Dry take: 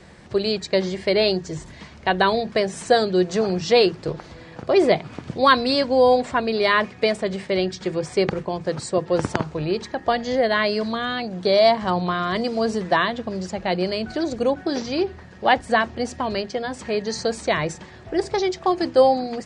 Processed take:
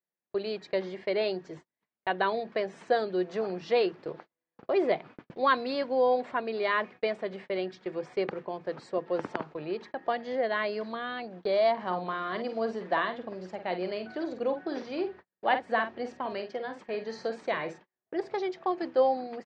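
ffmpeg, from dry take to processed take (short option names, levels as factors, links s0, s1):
-filter_complex "[0:a]asplit=3[s0][s1][s2];[s0]afade=t=out:st=11.77:d=0.02[s3];[s1]asplit=2[s4][s5];[s5]adelay=49,volume=0.355[s6];[s4][s6]amix=inputs=2:normalize=0,afade=t=in:st=11.77:d=0.02,afade=t=out:st=17.77:d=0.02[s7];[s2]afade=t=in:st=17.77:d=0.02[s8];[s3][s7][s8]amix=inputs=3:normalize=0,highpass=270,agate=range=0.01:threshold=0.0158:ratio=16:detection=peak,lowpass=2800,volume=0.376"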